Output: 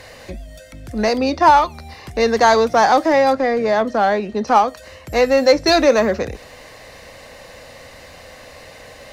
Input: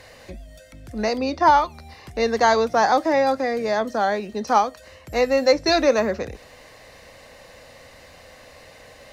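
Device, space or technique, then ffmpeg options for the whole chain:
parallel distortion: -filter_complex "[0:a]asettb=1/sr,asplit=3[link_01][link_02][link_03];[link_01]atrim=end=3.334[link_04];[link_02]atrim=start=3.33:end=4.68,asetpts=PTS-STARTPTS,afade=type=in:duration=0.004:curve=qsin,afade=type=out:start_time=1.346:duration=0.004:curve=qsin,aemphasis=mode=reproduction:type=50fm[link_05];[link_03]atrim=start=4.676[link_06];[link_04][link_05]acrossfade=duration=0.004:curve1=hsin:curve2=qsin[link_07];[link_07][link_06]acrossfade=duration=0.004:curve1=qsin:curve2=hsin,asplit=2[link_08][link_09];[link_09]asoftclip=type=hard:threshold=-21.5dB,volume=-7dB[link_10];[link_08][link_10]amix=inputs=2:normalize=0,volume=3dB"

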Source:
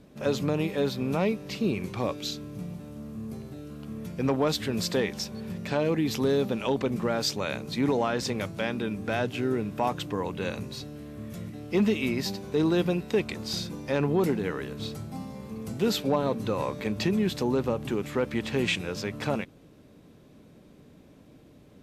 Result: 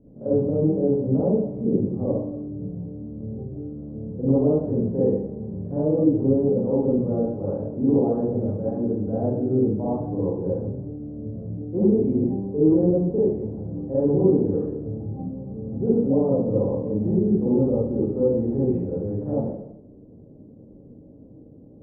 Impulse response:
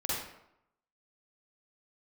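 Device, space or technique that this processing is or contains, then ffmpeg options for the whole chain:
next room: -filter_complex "[0:a]lowpass=frequency=580:width=0.5412,lowpass=frequency=580:width=1.3066[link_01];[1:a]atrim=start_sample=2205[link_02];[link_01][link_02]afir=irnorm=-1:irlink=0"

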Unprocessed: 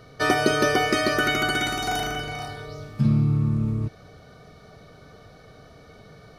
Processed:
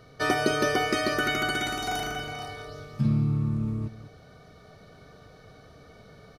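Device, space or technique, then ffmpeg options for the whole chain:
ducked delay: -filter_complex "[0:a]asplit=3[link_01][link_02][link_03];[link_02]adelay=196,volume=-5dB[link_04];[link_03]apad=whole_len=290079[link_05];[link_04][link_05]sidechaincompress=threshold=-32dB:ratio=8:attack=16:release=1150[link_06];[link_01][link_06]amix=inputs=2:normalize=0,volume=-4dB"

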